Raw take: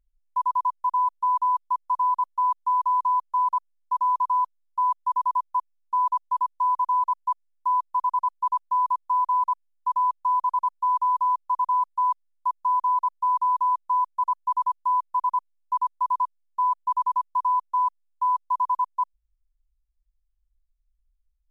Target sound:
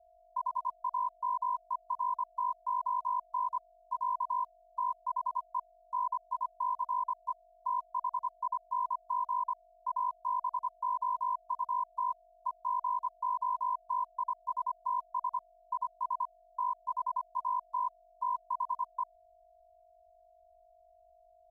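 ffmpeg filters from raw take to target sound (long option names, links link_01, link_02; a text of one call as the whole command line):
ffmpeg -i in.wav -af "aeval=exprs='val(0)+0.00316*sin(2*PI*680*n/s)':channel_layout=same,aeval=exprs='val(0)*sin(2*PI*25*n/s)':channel_layout=same,volume=-7.5dB" out.wav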